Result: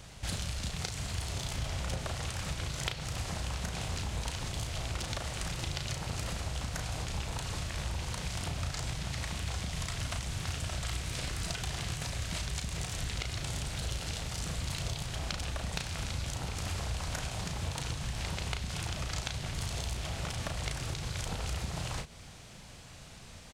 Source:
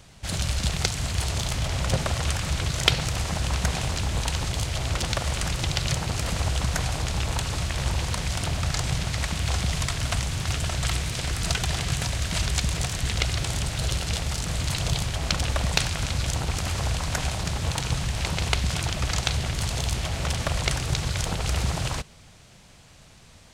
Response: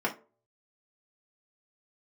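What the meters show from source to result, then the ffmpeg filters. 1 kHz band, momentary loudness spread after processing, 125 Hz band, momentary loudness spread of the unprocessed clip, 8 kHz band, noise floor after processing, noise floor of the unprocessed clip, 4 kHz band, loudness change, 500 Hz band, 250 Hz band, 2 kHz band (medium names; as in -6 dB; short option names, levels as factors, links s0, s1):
-9.5 dB, 1 LU, -10.0 dB, 3 LU, -9.5 dB, -50 dBFS, -51 dBFS, -10.0 dB, -9.5 dB, -9.5 dB, -9.0 dB, -9.5 dB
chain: -filter_complex "[0:a]acompressor=threshold=0.02:ratio=6,asplit=2[s0][s1];[s1]adelay=35,volume=0.501[s2];[s0][s2]amix=inputs=2:normalize=0"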